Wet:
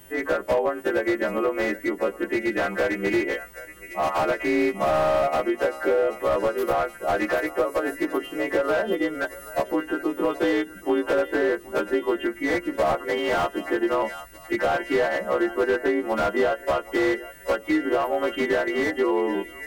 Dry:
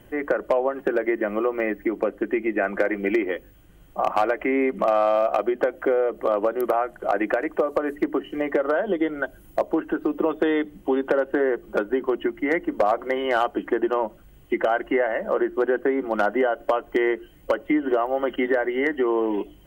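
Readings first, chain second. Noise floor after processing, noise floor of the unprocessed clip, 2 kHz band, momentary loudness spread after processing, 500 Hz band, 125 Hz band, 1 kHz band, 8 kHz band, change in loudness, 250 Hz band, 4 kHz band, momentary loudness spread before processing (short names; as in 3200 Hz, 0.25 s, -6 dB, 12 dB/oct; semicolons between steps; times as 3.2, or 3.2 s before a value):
-44 dBFS, -51 dBFS, +1.5 dB, 5 LU, -1.0 dB, +4.5 dB, -1.0 dB, n/a, -0.5 dB, -1.0 dB, +5.0 dB, 5 LU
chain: frequency quantiser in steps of 2 st; high shelf 4500 Hz +4 dB; on a send: thinning echo 0.776 s, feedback 63%, high-pass 980 Hz, level -14.5 dB; on the sum: slew limiter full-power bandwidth 94 Hz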